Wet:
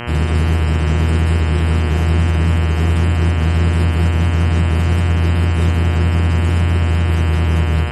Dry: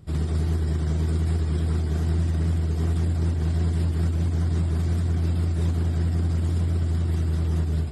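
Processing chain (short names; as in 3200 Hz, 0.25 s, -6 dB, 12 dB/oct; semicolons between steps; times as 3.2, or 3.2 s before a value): buzz 120 Hz, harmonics 26, -36 dBFS -2 dB/oct; gain +8.5 dB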